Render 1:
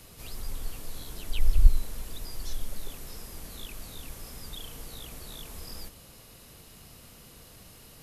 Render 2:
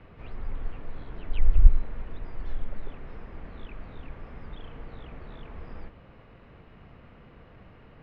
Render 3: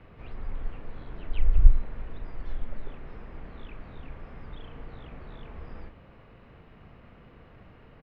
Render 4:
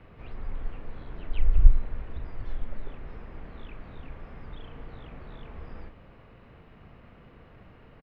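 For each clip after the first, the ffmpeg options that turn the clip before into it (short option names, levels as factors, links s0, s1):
-af "lowpass=f=2200:w=0.5412,lowpass=f=2200:w=1.3066,volume=1.33"
-filter_complex "[0:a]asplit=2[s0][s1];[s1]adelay=38,volume=0.282[s2];[s0][s2]amix=inputs=2:normalize=0,volume=0.891"
-filter_complex "[0:a]asplit=4[s0][s1][s2][s3];[s1]adelay=247,afreqshift=-44,volume=0.0891[s4];[s2]adelay=494,afreqshift=-88,volume=0.0367[s5];[s3]adelay=741,afreqshift=-132,volume=0.015[s6];[s0][s4][s5][s6]amix=inputs=4:normalize=0"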